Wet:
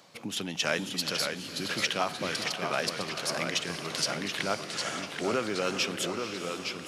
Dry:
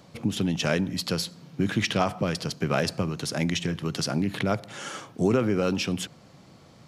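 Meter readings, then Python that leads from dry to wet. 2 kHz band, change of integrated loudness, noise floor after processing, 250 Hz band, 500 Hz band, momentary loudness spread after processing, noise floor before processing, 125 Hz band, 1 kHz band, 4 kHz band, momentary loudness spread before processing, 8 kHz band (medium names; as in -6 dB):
+1.0 dB, -3.5 dB, -41 dBFS, -9.5 dB, -4.5 dB, 5 LU, -53 dBFS, -13.5 dB, -1.0 dB, +2.0 dB, 7 LU, +1.5 dB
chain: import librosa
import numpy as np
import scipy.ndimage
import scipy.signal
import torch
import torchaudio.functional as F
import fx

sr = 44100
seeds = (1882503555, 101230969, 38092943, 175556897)

y = fx.highpass(x, sr, hz=930.0, slope=6)
y = fx.echo_diffused(y, sr, ms=479, feedback_pct=45, wet_db=-10.0)
y = fx.rider(y, sr, range_db=3, speed_s=2.0)
y = fx.echo_pitch(y, sr, ms=518, semitones=-1, count=3, db_per_echo=-6.0)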